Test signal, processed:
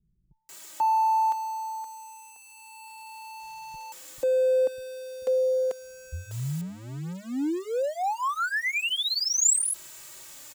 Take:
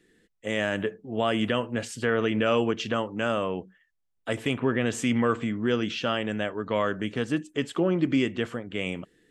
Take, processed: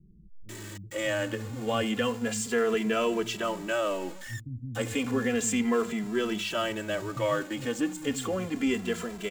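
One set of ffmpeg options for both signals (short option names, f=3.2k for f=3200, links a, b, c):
-filter_complex "[0:a]aeval=exprs='val(0)+0.5*0.0188*sgn(val(0))':c=same,equalizer=f=7.3k:w=4.2:g=9.5,acrossover=split=170[a][b];[b]adelay=490[c];[a][c]amix=inputs=2:normalize=0,asplit=2[d][e];[e]adelay=2.6,afreqshift=-0.32[f];[d][f]amix=inputs=2:normalize=1"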